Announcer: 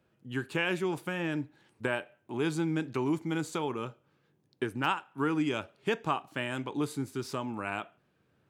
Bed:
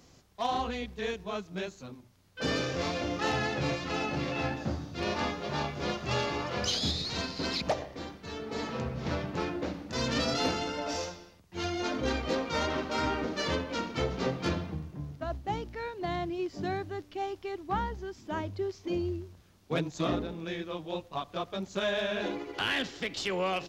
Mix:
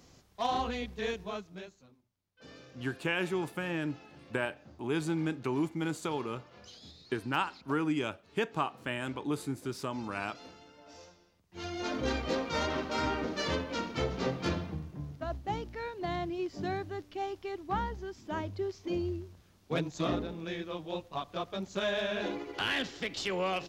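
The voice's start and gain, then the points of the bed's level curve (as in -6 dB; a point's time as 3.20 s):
2.50 s, -1.5 dB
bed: 1.23 s -0.5 dB
2.14 s -22 dB
10.77 s -22 dB
11.94 s -1.5 dB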